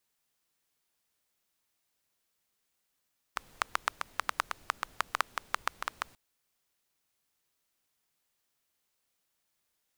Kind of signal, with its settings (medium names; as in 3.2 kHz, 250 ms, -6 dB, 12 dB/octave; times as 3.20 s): rain from filtered ticks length 2.79 s, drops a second 7.1, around 1.2 kHz, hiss -21 dB